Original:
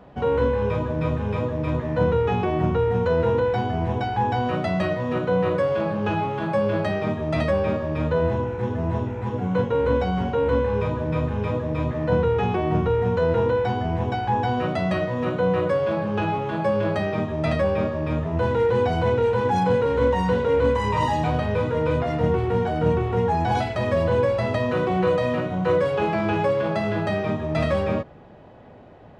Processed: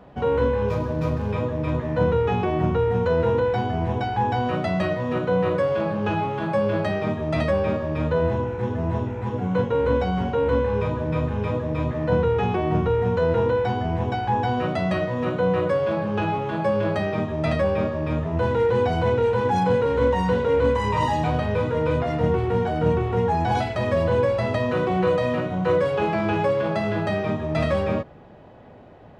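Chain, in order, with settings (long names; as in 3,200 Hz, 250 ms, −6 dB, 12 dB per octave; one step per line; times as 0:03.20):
0:00.68–0:01.32: running median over 15 samples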